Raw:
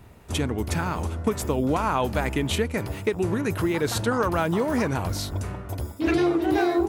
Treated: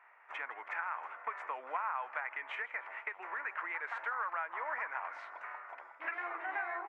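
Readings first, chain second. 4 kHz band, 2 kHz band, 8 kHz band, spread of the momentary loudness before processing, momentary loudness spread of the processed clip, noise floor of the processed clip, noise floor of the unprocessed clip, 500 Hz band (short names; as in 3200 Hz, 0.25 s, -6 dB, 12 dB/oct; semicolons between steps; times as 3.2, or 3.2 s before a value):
-24.0 dB, -5.0 dB, under -40 dB, 7 LU, 8 LU, -58 dBFS, -43 dBFS, -24.0 dB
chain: HPF 920 Hz 24 dB/oct; resonant high shelf 2900 Hz -12.5 dB, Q 3; compressor 5:1, threshold -30 dBFS, peak gain reduction 9.5 dB; tape spacing loss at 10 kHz 37 dB; on a send: frequency-shifting echo 0.16 s, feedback 56%, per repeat +30 Hz, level -19 dB; on the sum: gain +1 dB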